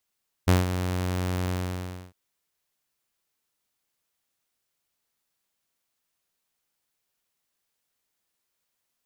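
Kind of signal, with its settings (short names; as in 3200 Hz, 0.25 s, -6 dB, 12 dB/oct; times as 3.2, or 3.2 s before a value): ADSR saw 91 Hz, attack 17 ms, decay 0.163 s, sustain -10.5 dB, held 1.02 s, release 0.638 s -12.5 dBFS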